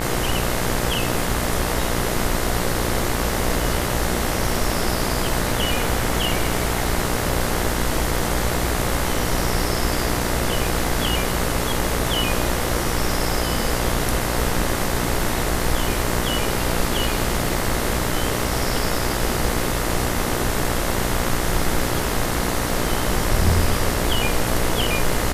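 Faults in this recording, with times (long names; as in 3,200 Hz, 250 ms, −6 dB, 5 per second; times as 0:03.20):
mains buzz 60 Hz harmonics 36 −26 dBFS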